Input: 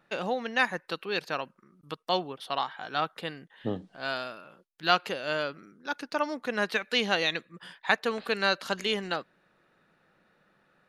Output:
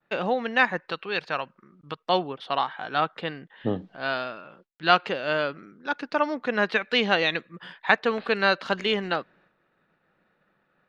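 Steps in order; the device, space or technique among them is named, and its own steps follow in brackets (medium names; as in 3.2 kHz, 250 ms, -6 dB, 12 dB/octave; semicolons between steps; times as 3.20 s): hearing-loss simulation (low-pass 3.4 kHz 12 dB/octave; expander -60 dBFS); 0.81–2.08 s: dynamic bell 290 Hz, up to -6 dB, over -45 dBFS, Q 0.77; trim +5 dB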